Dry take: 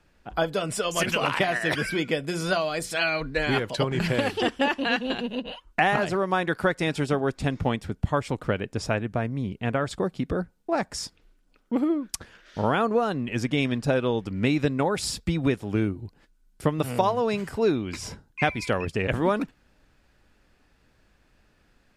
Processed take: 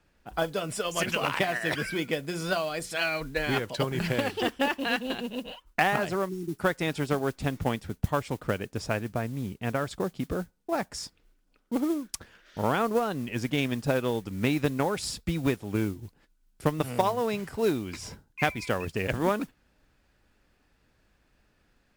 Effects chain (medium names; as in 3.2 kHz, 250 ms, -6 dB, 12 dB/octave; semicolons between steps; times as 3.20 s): spectral selection erased 6.29–6.60 s, 430–5200 Hz; modulation noise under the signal 22 dB; Chebyshev shaper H 3 -18 dB, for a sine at -8.5 dBFS